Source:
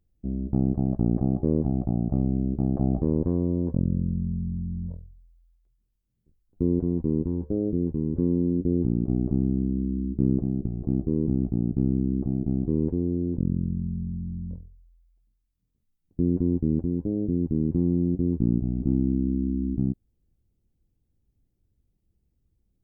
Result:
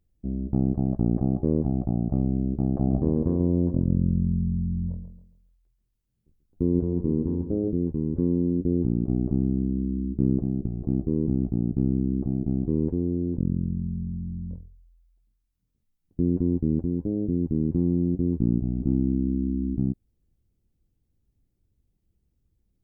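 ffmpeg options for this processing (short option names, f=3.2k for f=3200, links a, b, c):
-filter_complex "[0:a]asettb=1/sr,asplit=3[a][b][c];[a]atrim=end=2.734[d];[b]atrim=start=2.73:end=7.68,asetpts=PTS-STARTPTS,afade=t=in:d=0.004:c=qsin,afade=t=out:st=4.946:d=0.004:c=qsin,aecho=1:1:137|274|411|548:0.355|0.121|0.041|0.0139,atrim=end_sample=218295[e];[c]atrim=start=7.676[f];[d][e]acrossfade=d=0.004:c1=hsin:c2=qsin[g];[g][f]acrossfade=d=0.004:c1=qsin:c2=hsin"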